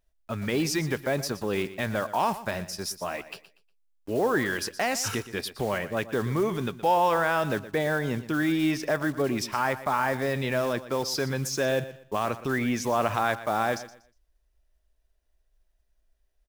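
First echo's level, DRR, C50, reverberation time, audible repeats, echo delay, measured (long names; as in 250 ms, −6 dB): −15.0 dB, no reverb audible, no reverb audible, no reverb audible, 2, 120 ms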